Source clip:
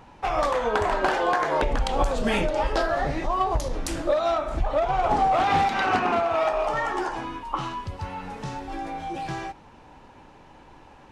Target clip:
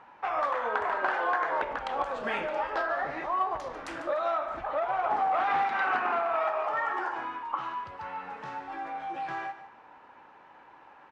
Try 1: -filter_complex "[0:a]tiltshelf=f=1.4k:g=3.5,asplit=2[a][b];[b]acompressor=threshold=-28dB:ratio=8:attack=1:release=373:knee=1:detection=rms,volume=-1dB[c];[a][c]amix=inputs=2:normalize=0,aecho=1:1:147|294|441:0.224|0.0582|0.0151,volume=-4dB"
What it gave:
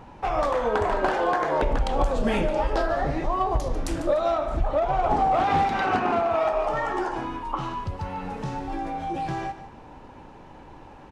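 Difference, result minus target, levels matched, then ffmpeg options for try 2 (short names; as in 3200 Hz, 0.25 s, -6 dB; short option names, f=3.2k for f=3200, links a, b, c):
2000 Hz band -5.5 dB
-filter_complex "[0:a]bandpass=f=1.5k:t=q:w=1.3:csg=0,tiltshelf=f=1.4k:g=3.5,asplit=2[a][b];[b]acompressor=threshold=-28dB:ratio=8:attack=1:release=373:knee=1:detection=rms,volume=-1dB[c];[a][c]amix=inputs=2:normalize=0,aecho=1:1:147|294|441:0.224|0.0582|0.0151,volume=-4dB"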